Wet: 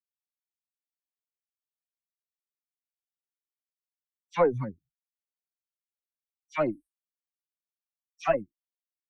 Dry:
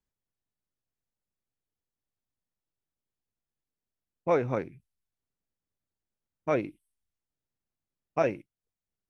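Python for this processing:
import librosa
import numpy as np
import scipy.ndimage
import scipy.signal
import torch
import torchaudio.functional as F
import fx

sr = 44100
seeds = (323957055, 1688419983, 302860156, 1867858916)

y = fx.bin_expand(x, sr, power=3.0)
y = fx.cheby_harmonics(y, sr, harmonics=(4, 7), levels_db=(-24, -34), full_scale_db=-16.0)
y = fx.dispersion(y, sr, late='lows', ms=108.0, hz=2000.0)
y = F.gain(torch.from_numpy(y), 5.5).numpy()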